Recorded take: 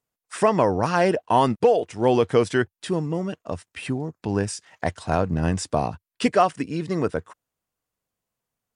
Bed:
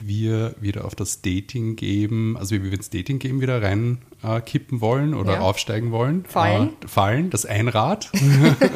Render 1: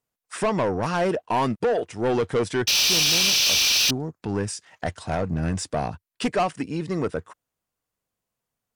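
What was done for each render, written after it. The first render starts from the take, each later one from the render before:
0:02.67–0:03.91: sound drawn into the spectrogram noise 2,300–6,300 Hz −14 dBFS
soft clipping −17 dBFS, distortion −9 dB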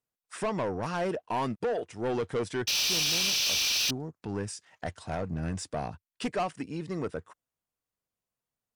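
level −7.5 dB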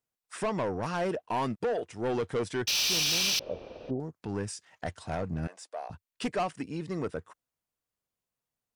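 0:03.39–0:04.00: low-pass with resonance 530 Hz, resonance Q 4
0:05.47–0:05.90: four-pole ladder high-pass 490 Hz, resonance 40%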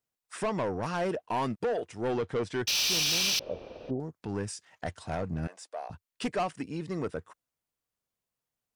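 0:02.14–0:02.54: high-frequency loss of the air 66 metres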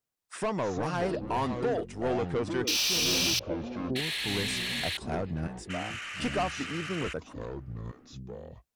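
delay with pitch and tempo change per echo 174 ms, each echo −6 semitones, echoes 2, each echo −6 dB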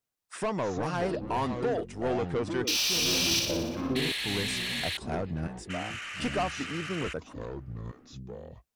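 0:03.25–0:04.12: flutter between parallel walls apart 10.2 metres, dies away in 0.91 s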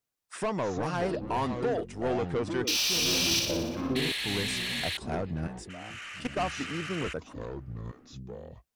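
0:05.69–0:06.41: output level in coarse steps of 14 dB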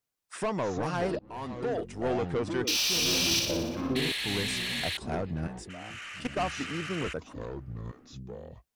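0:01.19–0:01.86: fade in, from −23 dB

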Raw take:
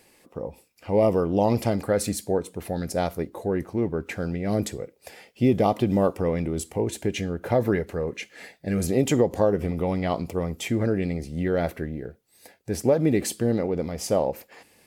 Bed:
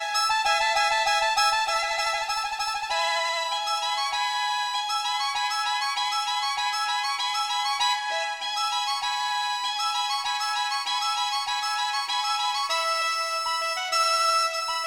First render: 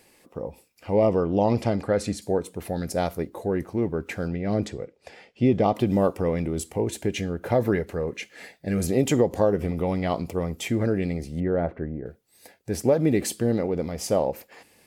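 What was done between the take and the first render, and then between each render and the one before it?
0:00.94–0:02.22: high-frequency loss of the air 67 metres
0:04.28–0:05.75: high-frequency loss of the air 93 metres
0:11.40–0:12.06: low-pass filter 1,300 Hz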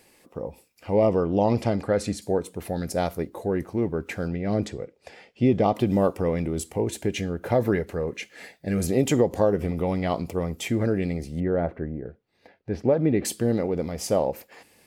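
0:12.03–0:13.25: high-frequency loss of the air 280 metres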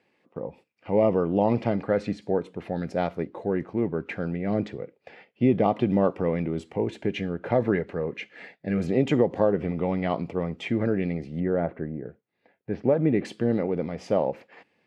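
noise gate −48 dBFS, range −8 dB
Chebyshev band-pass filter 140–2,600 Hz, order 2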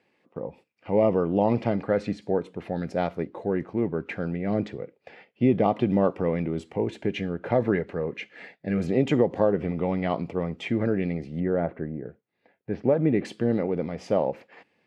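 no processing that can be heard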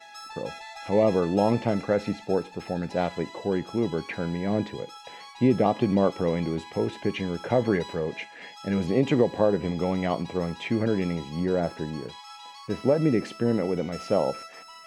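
mix in bed −18.5 dB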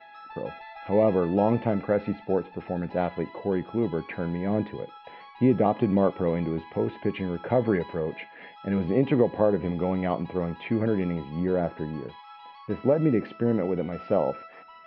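Bessel low-pass filter 2,200 Hz, order 8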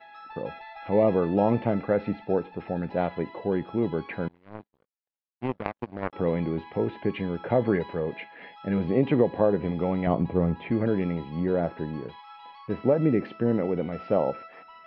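0:04.28–0:06.13: power curve on the samples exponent 3
0:10.07–0:10.71: spectral tilt −2.5 dB per octave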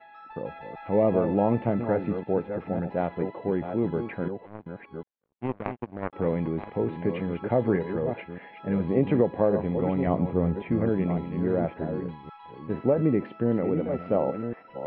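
delay that plays each chunk backwards 559 ms, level −8 dB
high-frequency loss of the air 320 metres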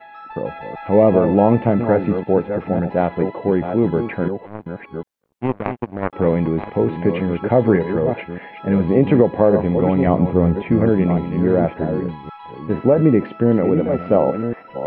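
level +9.5 dB
brickwall limiter −2 dBFS, peak gain reduction 2 dB

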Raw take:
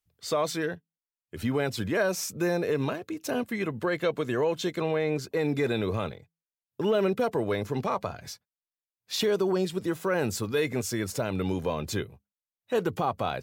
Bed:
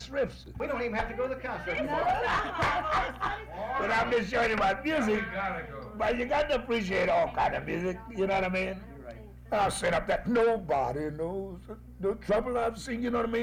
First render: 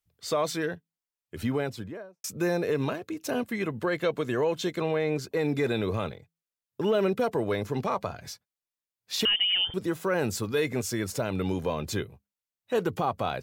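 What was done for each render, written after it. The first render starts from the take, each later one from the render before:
0:01.39–0:02.24: fade out and dull
0:09.25–0:09.74: voice inversion scrambler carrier 3,300 Hz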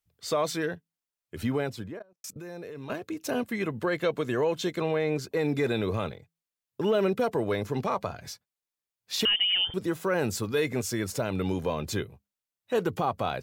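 0:01.99–0:02.90: output level in coarse steps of 20 dB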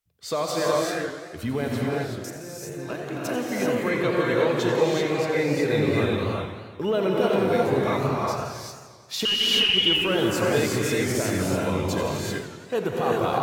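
reverb whose tail is shaped and stops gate 410 ms rising, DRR −3.5 dB
feedback echo with a swinging delay time 87 ms, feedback 72%, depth 202 cents, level −10.5 dB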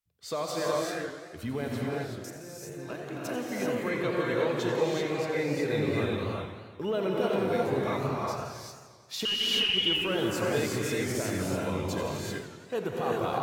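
level −6 dB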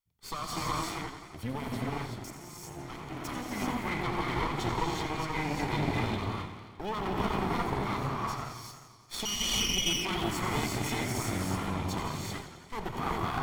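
lower of the sound and its delayed copy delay 0.9 ms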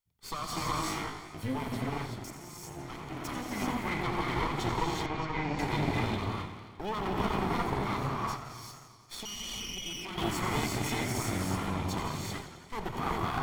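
0:00.82–0:01.63: flutter between parallel walls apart 3.3 metres, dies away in 0.25 s
0:05.06–0:05.59: high-frequency loss of the air 130 metres
0:08.36–0:10.18: downward compressor 2.5 to 1, threshold −40 dBFS

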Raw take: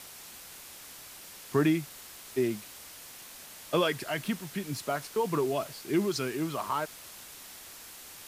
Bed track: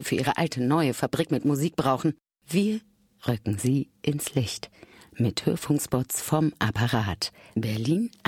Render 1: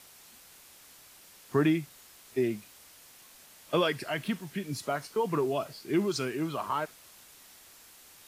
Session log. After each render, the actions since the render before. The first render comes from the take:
noise reduction from a noise print 7 dB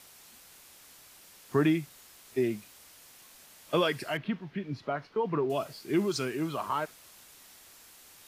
0:04.17–0:05.50: high-frequency loss of the air 290 metres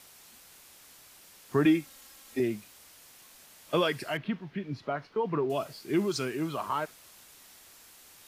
0:01.65–0:02.40: comb filter 3.7 ms, depth 69%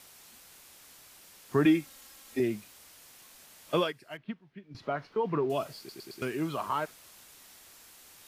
0:03.74–0:04.75: expander for the loud parts 2.5 to 1, over −35 dBFS
0:05.78: stutter in place 0.11 s, 4 plays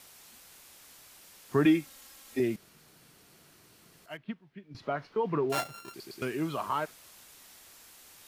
0:02.56–0:04.06: fill with room tone
0:05.52–0:05.94: samples sorted by size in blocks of 32 samples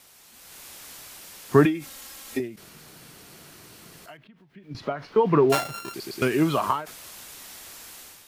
automatic gain control gain up to 11 dB
every ending faded ahead of time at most 130 dB per second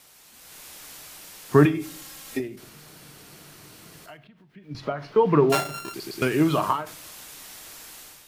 rectangular room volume 630 cubic metres, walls furnished, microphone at 0.5 metres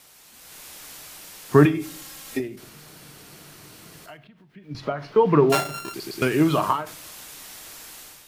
level +1.5 dB

